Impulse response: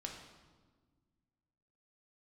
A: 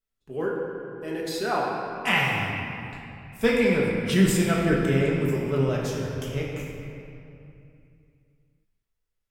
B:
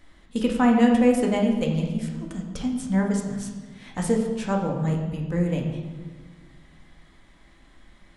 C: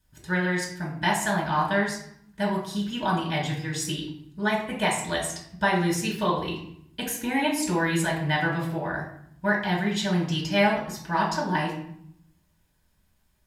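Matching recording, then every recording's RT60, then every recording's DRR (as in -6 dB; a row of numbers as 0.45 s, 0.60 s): B; 2.7 s, 1.5 s, 0.70 s; -4.0 dB, 0.5 dB, -3.5 dB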